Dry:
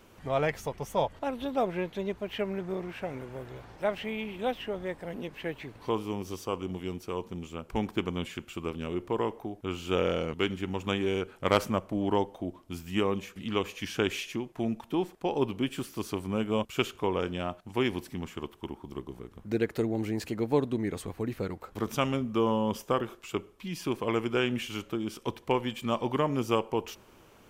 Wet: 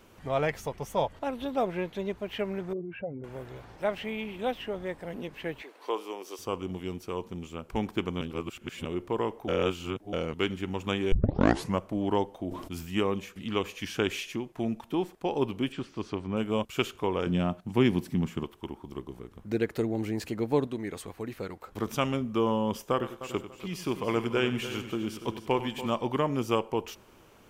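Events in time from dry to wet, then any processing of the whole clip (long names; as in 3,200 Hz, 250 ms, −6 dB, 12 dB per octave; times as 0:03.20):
0:02.73–0:03.24: expanding power law on the bin magnitudes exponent 2.3
0:05.62–0:06.39: high-pass filter 370 Hz 24 dB per octave
0:08.21–0:08.85: reverse
0:09.48–0:10.13: reverse
0:11.12: tape start 0.67 s
0:12.47–0:13.03: level that may fall only so fast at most 52 dB per second
0:15.72–0:16.37: high-frequency loss of the air 140 metres
0:17.26–0:18.44: parametric band 170 Hz +11.5 dB 1.5 octaves
0:20.67–0:21.67: low-shelf EQ 360 Hz −7 dB
0:22.92–0:25.90: echo machine with several playback heads 96 ms, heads first and third, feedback 43%, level −13 dB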